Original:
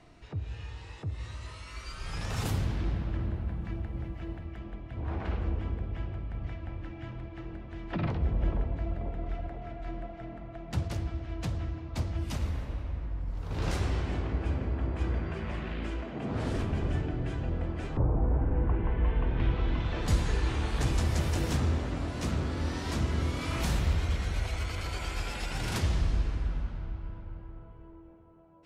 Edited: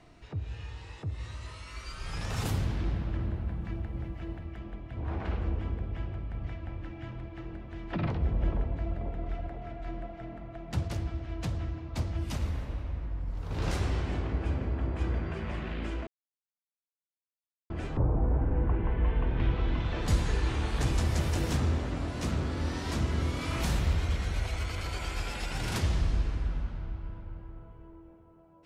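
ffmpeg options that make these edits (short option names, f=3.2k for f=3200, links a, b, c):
-filter_complex "[0:a]asplit=3[a][b][c];[a]atrim=end=16.07,asetpts=PTS-STARTPTS,afade=t=out:st=16.066:d=0.004:c=hsin[d];[b]atrim=start=16.07:end=17.7,asetpts=PTS-STARTPTS,volume=0[e];[c]atrim=start=17.7,asetpts=PTS-STARTPTS,afade=t=in:d=0.004:c=hsin[f];[d][e][f]concat=n=3:v=0:a=1"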